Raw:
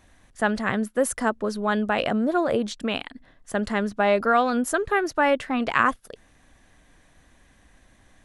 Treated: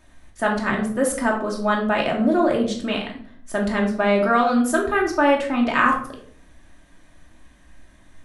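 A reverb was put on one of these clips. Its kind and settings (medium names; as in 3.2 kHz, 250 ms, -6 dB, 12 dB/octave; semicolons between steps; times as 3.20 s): simulated room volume 630 m³, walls furnished, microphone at 2.7 m; trim -1 dB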